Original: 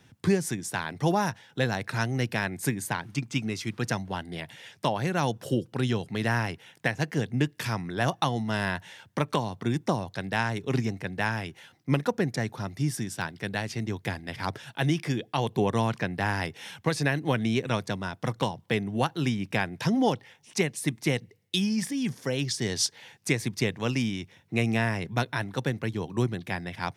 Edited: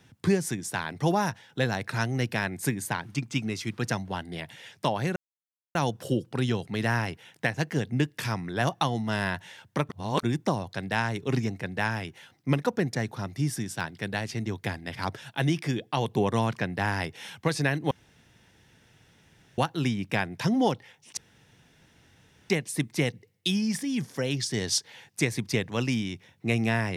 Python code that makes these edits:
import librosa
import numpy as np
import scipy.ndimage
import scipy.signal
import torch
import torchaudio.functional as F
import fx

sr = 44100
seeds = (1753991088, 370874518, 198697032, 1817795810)

y = fx.edit(x, sr, fx.insert_silence(at_s=5.16, length_s=0.59),
    fx.reverse_span(start_s=9.3, length_s=0.34),
    fx.room_tone_fill(start_s=17.32, length_s=1.67),
    fx.insert_room_tone(at_s=20.58, length_s=1.33), tone=tone)